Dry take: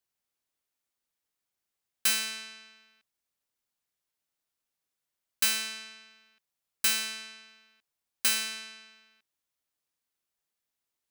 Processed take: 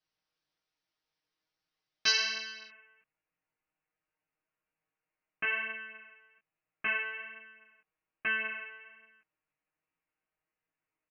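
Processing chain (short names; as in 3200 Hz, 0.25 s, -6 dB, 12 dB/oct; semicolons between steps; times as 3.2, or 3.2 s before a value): steep low-pass 5900 Hz 96 dB/oct, from 2.67 s 2800 Hz; comb 6.4 ms, depth 98%; chorus 1.2 Hz, delay 17.5 ms, depth 3.2 ms; gain +3 dB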